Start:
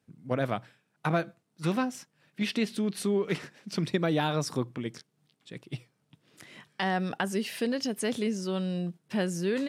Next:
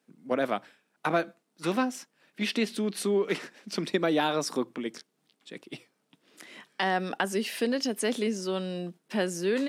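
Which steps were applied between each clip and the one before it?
high-pass filter 220 Hz 24 dB per octave
level +2.5 dB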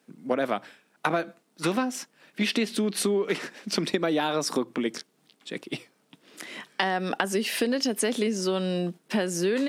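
downward compressor 6 to 1, threshold −30 dBFS, peak gain reduction 9.5 dB
level +8 dB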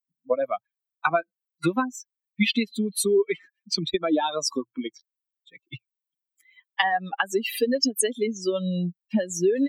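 spectral dynamics exaggerated over time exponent 3
level +8.5 dB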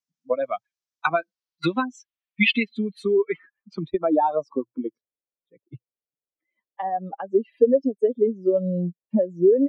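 low-pass filter sweep 6,000 Hz → 530 Hz, 0:01.14–0:04.90

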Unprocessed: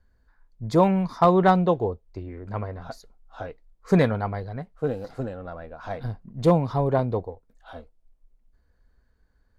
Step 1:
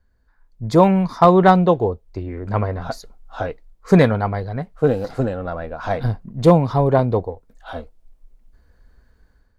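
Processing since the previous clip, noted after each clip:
automatic gain control gain up to 10.5 dB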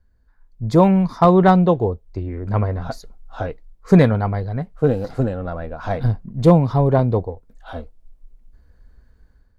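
low-shelf EQ 290 Hz +6.5 dB
level −3 dB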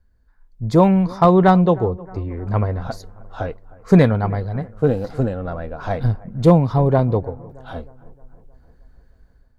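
bucket-brigade delay 311 ms, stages 4,096, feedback 54%, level −22 dB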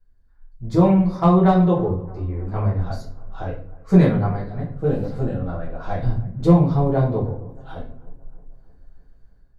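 rectangular room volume 47 cubic metres, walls mixed, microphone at 1.1 metres
level −11 dB

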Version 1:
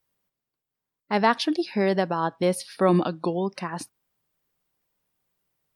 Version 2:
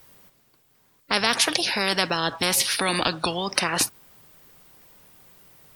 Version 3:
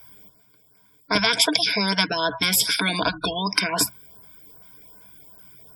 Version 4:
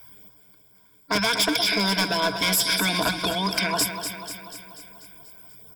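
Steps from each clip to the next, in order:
every bin compressed towards the loudest bin 4 to 1; level +5.5 dB
auto-filter notch saw up 2.6 Hz 270–3,500 Hz; gate on every frequency bin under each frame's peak −20 dB strong; EQ curve with evenly spaced ripples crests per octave 1.7, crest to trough 16 dB
gain into a clipping stage and back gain 17.5 dB; repeating echo 244 ms, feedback 58%, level −8.5 dB

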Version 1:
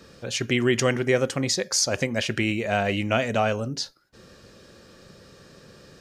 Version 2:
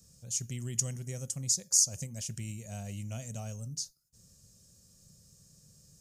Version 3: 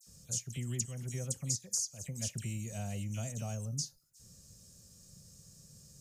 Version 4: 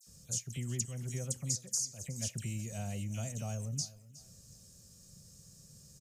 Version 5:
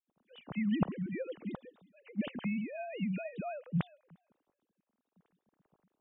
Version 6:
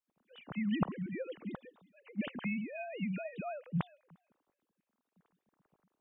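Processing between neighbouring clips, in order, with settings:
drawn EQ curve 160 Hz 0 dB, 330 Hz −20 dB, 640 Hz −16 dB, 1,600 Hz −23 dB, 3,900 Hz −12 dB, 6,700 Hz +10 dB; level −7.5 dB
downward compressor 4 to 1, threshold −37 dBFS, peak gain reduction 14.5 dB; all-pass dispersion lows, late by 67 ms, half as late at 2,600 Hz; level +3 dB
repeating echo 367 ms, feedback 31%, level −19 dB
three sine waves on the formant tracks; multiband upward and downward expander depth 70%
auto-filter bell 3.4 Hz 970–2,500 Hz +7 dB; level −2 dB

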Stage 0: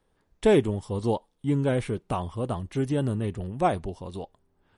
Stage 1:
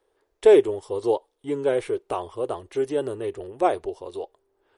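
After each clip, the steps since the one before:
low shelf with overshoot 280 Hz −11.5 dB, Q 3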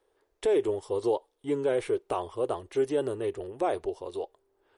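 brickwall limiter −16 dBFS, peak gain reduction 10.5 dB
level −1.5 dB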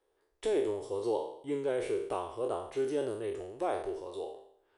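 peak hold with a decay on every bin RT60 0.66 s
level −6.5 dB

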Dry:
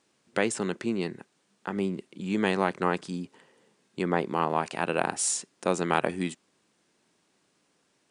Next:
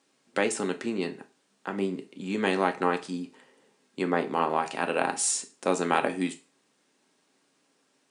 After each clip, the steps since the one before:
high-pass filter 170 Hz 12 dB per octave
convolution reverb RT60 0.35 s, pre-delay 4 ms, DRR 6 dB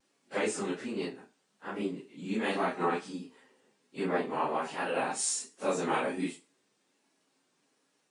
random phases in long frames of 100 ms
pitch vibrato 1.3 Hz 58 cents
level −4.5 dB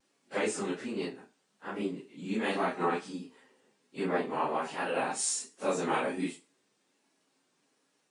no processing that can be heard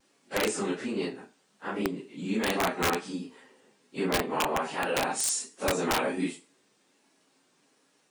in parallel at −2.5 dB: downward compressor 16 to 1, threshold −39 dBFS, peak gain reduction 15.5 dB
on the sum: wrap-around overflow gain 20 dB
level +1.5 dB

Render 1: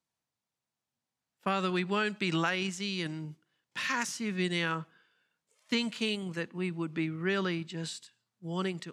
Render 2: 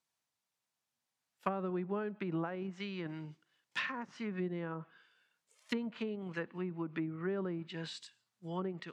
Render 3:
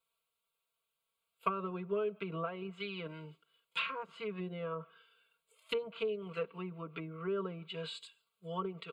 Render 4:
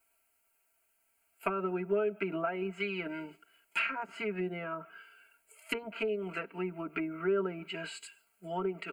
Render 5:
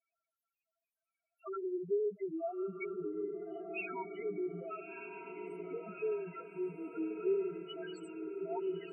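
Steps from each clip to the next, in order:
treble cut that deepens with the level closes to 600 Hz, closed at −28 dBFS; low-shelf EQ 490 Hz −9 dB; level +2 dB
phaser with its sweep stopped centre 1,200 Hz, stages 8; comb filter 4.4 ms, depth 87%; level +2.5 dB
in parallel at +3 dB: downward compressor, threshold −46 dBFS, peak gain reduction 18 dB; on the sum: phaser with its sweep stopped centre 730 Hz, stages 8; level +7 dB
spectral peaks only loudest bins 1; feedback delay with all-pass diffusion 1,259 ms, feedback 51%, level −5.5 dB; level +2.5 dB

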